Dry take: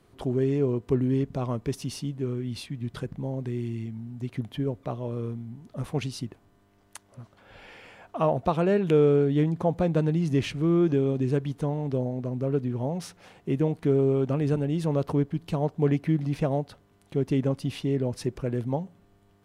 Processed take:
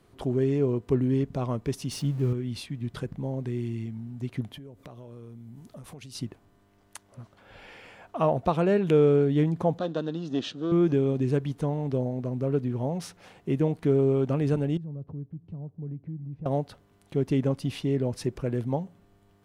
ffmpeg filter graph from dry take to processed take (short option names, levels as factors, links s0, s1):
-filter_complex "[0:a]asettb=1/sr,asplit=3[s0][s1][s2];[s0]atrim=end=1.914[s3];[s1]atrim=start=1.91:end=2.33,asetpts=PTS-STARTPTS,afade=t=in:d=0.004:c=qsin,afade=t=out:st=0.416:d=0.004:c=qsin,aeval=exprs='val(0)+0.5*0.00631*sgn(val(0))':c=same,equalizer=f=130:t=o:w=0.4:g=7.5[s4];[s2]atrim=start=2.326[s5];[s3][s4]acrossfade=d=0.004:c1=hsin:c2=qsin[s6];[s6][s5]acrossfade=d=0.004:c1=qsin:c2=hsin,asettb=1/sr,asplit=3[s7][s8][s9];[s7]atrim=end=4.544[s10];[s8]atrim=start=4.54:end=6.15,asetpts=PTS-STARTPTS,afade=t=in:d=0.004:c=qsin,afade=t=out:st=1.606:d=0.004:c=qsin,aemphasis=mode=production:type=cd,acompressor=threshold=0.01:ratio=16:attack=3.2:release=140:knee=1:detection=peak[s11];[s9]atrim=start=6.146[s12];[s10][s11]acrossfade=d=0.004:c1=hsin:c2=qsin[s13];[s13][s12]acrossfade=d=0.004:c1=qsin:c2=hsin,asettb=1/sr,asplit=3[s14][s15][s16];[s14]atrim=end=9.784[s17];[s15]atrim=start=9.78:end=10.72,asetpts=PTS-STARTPTS,afade=t=in:d=0.004:c=qsin,afade=t=out:st=0.936:d=0.004:c=qsin,aeval=exprs='if(lt(val(0),0),0.447*val(0),val(0))':c=same,highpass=260,equalizer=f=260:t=q:w=4:g=4,equalizer=f=410:t=q:w=4:g=-3,equalizer=f=890:t=q:w=4:g=-8,equalizer=f=2300:t=q:w=4:g=-10,equalizer=f=3600:t=q:w=4:g=9,lowpass=f=6800:w=0.5412,lowpass=f=6800:w=1.3066,bandreject=f=2100:w=5.7[s18];[s16]atrim=start=10.716[s19];[s17][s18]acrossfade=d=0.004:c1=hsin:c2=qsin[s20];[s20][s19]acrossfade=d=0.004:c1=qsin:c2=hsin,asettb=1/sr,asplit=3[s21][s22][s23];[s21]atrim=end=14.774[s24];[s22]atrim=start=14.77:end=16.46,asetpts=PTS-STARTPTS,afade=t=in:d=0.004:c=qsin,afade=t=out:st=1.686:d=0.004:c=qsin,bandpass=f=120:t=q:w=1.3,acompressor=threshold=0.01:ratio=2:attack=3.2:release=140:knee=1:detection=peak[s25];[s23]atrim=start=16.456[s26];[s24][s25]acrossfade=d=0.004:c1=hsin:c2=qsin[s27];[s27][s26]acrossfade=d=0.004:c1=qsin:c2=hsin"